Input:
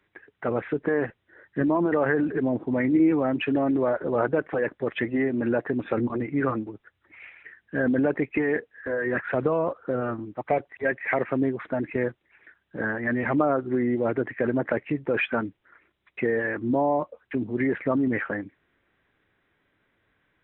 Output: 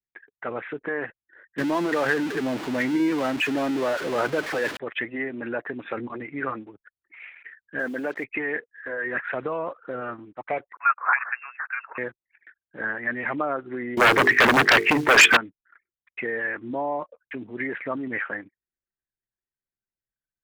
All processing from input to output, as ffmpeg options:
-filter_complex "[0:a]asettb=1/sr,asplit=3[a][b][c];[a]atrim=end=1.584[d];[b]atrim=start=1.58:end=4.77,asetpts=PTS-STARTPTS,afade=t=in:d=0.004:c=qsin,afade=t=out:st=3.186:d=0.004:c=qsin,aeval=exprs='val(0)+0.5*0.0422*sgn(val(0))':c=same,equalizer=f=210:t=o:w=2.4:g=4[e];[c]atrim=start=4.766[f];[d][e]acrossfade=d=0.004:c1=hsin:c2=qsin[g];[g][f]acrossfade=d=0.004:c1=qsin:c2=hsin,asettb=1/sr,asplit=3[h][i][j];[h]atrim=end=7.794[k];[i]atrim=start=7.79:end=8.24,asetpts=PTS-STARTPTS,afade=t=in:d=0.004:c=qsin,afade=t=out:st=0.446:d=0.004:c=qsin,highpass=210,acrusher=bits=7:mix=0:aa=0.5[l];[j]atrim=start=8.236[m];[k][l]acrossfade=d=0.004:c1=hsin:c2=qsin[n];[n][m]acrossfade=d=0.004:c1=qsin:c2=hsin,asettb=1/sr,asplit=3[o][p][q];[o]atrim=end=10.734[r];[p]atrim=start=10.73:end=11.98,asetpts=PTS-STARTPTS,afade=t=in:d=0.004:c=qsin,afade=t=out:st=1.246:d=0.004:c=qsin,adynamicsmooth=sensitivity=3:basefreq=2k,highpass=f=1.4k:t=q:w=3.8,lowpass=f=2.6k:t=q:w=0.5098,lowpass=f=2.6k:t=q:w=0.6013,lowpass=f=2.6k:t=q:w=0.9,lowpass=f=2.6k:t=q:w=2.563,afreqshift=-3000[s];[q]atrim=start=11.976[t];[r][s]acrossfade=d=0.004:c1=hsin:c2=qsin[u];[u][t]acrossfade=d=0.004:c1=qsin:c2=hsin,asettb=1/sr,asplit=3[v][w][x];[v]atrim=end=13.974[y];[w]atrim=start=13.97:end=15.37,asetpts=PTS-STARTPTS,afade=t=in:d=0.004:c=qsin,afade=t=out:st=1.396:d=0.004:c=qsin,bandreject=f=50:t=h:w=6,bandreject=f=100:t=h:w=6,bandreject=f=150:t=h:w=6,bandreject=f=200:t=h:w=6,bandreject=f=250:t=h:w=6,bandreject=f=300:t=h:w=6,bandreject=f=350:t=h:w=6,bandreject=f=400:t=h:w=6,bandreject=f=450:t=h:w=6,acrusher=bits=6:mode=log:mix=0:aa=0.000001,aeval=exprs='0.316*sin(PI/2*5.62*val(0)/0.316)':c=same[z];[x]atrim=start=15.366[aa];[y][z]acrossfade=d=0.004:c1=hsin:c2=qsin[ab];[ab][aa]acrossfade=d=0.004:c1=qsin:c2=hsin,lowshelf=f=97:g=-8,anlmdn=0.001,equalizer=f=2.5k:w=0.34:g=11.5,volume=-8.5dB"

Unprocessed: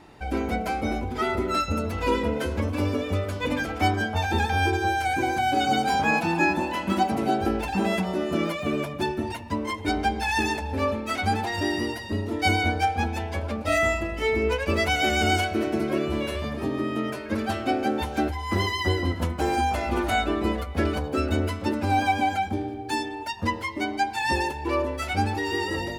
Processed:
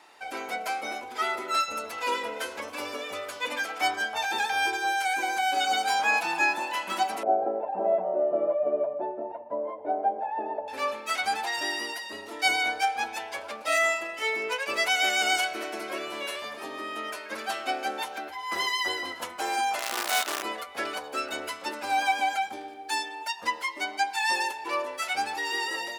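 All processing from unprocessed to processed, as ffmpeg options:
-filter_complex "[0:a]asettb=1/sr,asplit=3[a][b][c];[a]atrim=end=7.234[d];[b]atrim=start=7.23:end=10.68,asetpts=PTS-STARTPTS,afade=t=in:d=0.004:c=qsin,afade=t=out:st=3.446:d=0.004:c=qsin,lowpass=f=610:t=q:w=5.5,aemphasis=mode=reproduction:type=75kf[e];[c]atrim=start=10.676[f];[d][e]acrossfade=d=0.004:c1=hsin:c2=qsin[g];[g][f]acrossfade=d=0.004:c1=qsin:c2=hsin,asettb=1/sr,asplit=3[h][i][j];[h]atrim=end=18.084[k];[i]atrim=start=18.08:end=18.52,asetpts=PTS-STARTPTS,afade=t=in:d=0.004:c=qsin,afade=t=out:st=0.436:d=0.004:c=qsin,equalizer=f=8.3k:w=0.7:g=-8,acompressor=threshold=-25dB:ratio=4:attack=3.2:release=140:knee=1:detection=peak[l];[j]atrim=start=18.516[m];[k][l]acrossfade=d=0.004:c1=hsin:c2=qsin[n];[n][m]acrossfade=d=0.004:c1=qsin:c2=hsin,asettb=1/sr,asplit=3[o][p][q];[o]atrim=end=19.794[r];[p]atrim=start=19.79:end=20.43,asetpts=PTS-STARTPTS,afade=t=in:d=0.004:c=qsin,afade=t=out:st=0.636:d=0.004:c=qsin,tremolo=f=290:d=0.4,acrusher=bits=5:dc=4:mix=0:aa=0.000001[s];[q]atrim=start=20.426[t];[r][s]acrossfade=d=0.004:c1=hsin:c2=qsin[u];[u][t]acrossfade=d=0.004:c1=qsin:c2=hsin,highpass=740,equalizer=f=8.5k:t=o:w=1.9:g=3.5"

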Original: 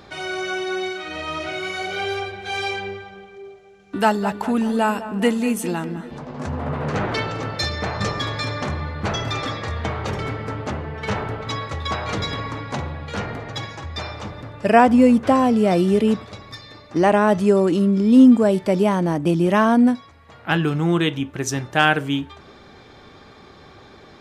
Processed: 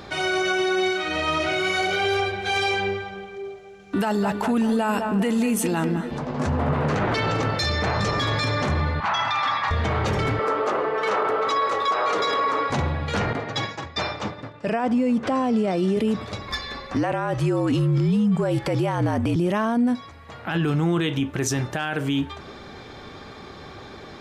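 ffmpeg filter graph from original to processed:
-filter_complex "[0:a]asettb=1/sr,asplit=3[a][b][c];[a]atrim=end=9.004[d];[b]atrim=start=9:end=9.71,asetpts=PTS-STARTPTS,afade=t=in:d=0.004:c=qsin,afade=t=out:st=0.706:d=0.004:c=qsin,highpass=140,lowpass=4k,lowshelf=f=640:t=q:w=3:g=-12.5[e];[c]atrim=start=9.706[f];[d][e]acrossfade=d=0.004:c1=hsin:c2=qsin[g];[g][f]acrossfade=d=0.004:c1=qsin:c2=hsin,asettb=1/sr,asplit=3[h][i][j];[h]atrim=end=10.394[k];[i]atrim=start=10.39:end=12.7,asetpts=PTS-STARTPTS,afade=t=in:d=0.004:c=qsin,afade=t=out:st=2.306:d=0.004:c=qsin,highpass=f=440:t=q:w=2.2,equalizer=f=1.2k:t=o:w=0.41:g=10[l];[j]atrim=start=12.696[m];[k][l]acrossfade=d=0.004:c1=hsin:c2=qsin[n];[n][m]acrossfade=d=0.004:c1=qsin:c2=hsin,asettb=1/sr,asplit=3[o][p][q];[o]atrim=end=13.334[r];[p]atrim=start=13.33:end=15.97,asetpts=PTS-STARTPTS,afade=t=in:d=0.004:c=qsin,afade=t=out:st=2.636:d=0.004:c=qsin,highpass=140,lowpass=7.5k,agate=range=-33dB:threshold=-33dB:ratio=3:release=100:detection=peak[s];[q]atrim=start=15.966[t];[r][s]acrossfade=d=0.004:c1=hsin:c2=qsin[u];[u][t]acrossfade=d=0.004:c1=qsin:c2=hsin,asettb=1/sr,asplit=3[v][w][x];[v]atrim=end=16.484[y];[w]atrim=start=16.48:end=19.36,asetpts=PTS-STARTPTS,afade=t=in:d=0.004:c=qsin,afade=t=out:st=2.876:d=0.004:c=qsin,afreqshift=-51,equalizer=f=1.5k:w=0.46:g=6[z];[x]atrim=start=19.356[aa];[y][z]acrossfade=d=0.004:c1=hsin:c2=qsin[ab];[ab][aa]acrossfade=d=0.004:c1=qsin:c2=hsin,acompressor=threshold=-19dB:ratio=6,alimiter=limit=-20dB:level=0:latency=1:release=11,volume=5dB"

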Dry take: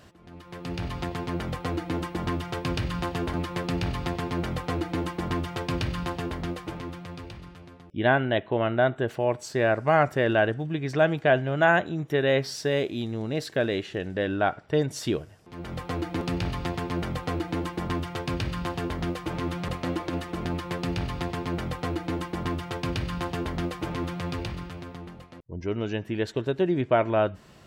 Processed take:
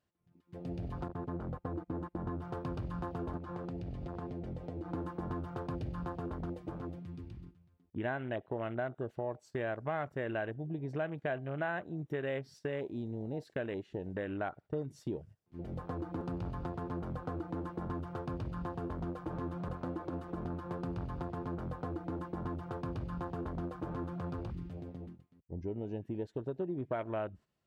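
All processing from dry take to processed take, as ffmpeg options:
-filter_complex "[0:a]asettb=1/sr,asplit=3[a][b][c];[a]atrim=end=1.084[d];[b]atrim=start=1.08:end=2.42,asetpts=PTS-STARTPTS,afade=t=in:d=0.004:c=qsin,afade=t=out:st=1.336:d=0.004:c=qsin,agate=range=-17dB:threshold=-35dB:ratio=16:release=100:detection=peak,highshelf=f=2.3k:g=-9.5[e];[c]atrim=start=2.416[f];[d][e]acrossfade=d=0.004:c1=hsin:c2=qsin[g];[g][f]acrossfade=d=0.004:c1=qsin:c2=hsin,asettb=1/sr,asplit=3[h][i][j];[h]atrim=end=3.374[k];[i]atrim=start=3.37:end=4.93,asetpts=PTS-STARTPTS,afade=t=in:d=0.004:c=qsin,afade=t=out:st=1.556:d=0.004:c=qsin,equalizer=f=12k:t=o:w=0.48:g=-14,acompressor=threshold=-31dB:ratio=6:attack=3.2:release=140:knee=1:detection=peak[l];[j]atrim=start=4.926[m];[k][l]acrossfade=d=0.004:c1=hsin:c2=qsin[n];[n][m]acrossfade=d=0.004:c1=qsin:c2=hsin,afwtdn=0.02,agate=range=-11dB:threshold=-44dB:ratio=16:detection=peak,acompressor=threshold=-32dB:ratio=3,volume=-4dB"

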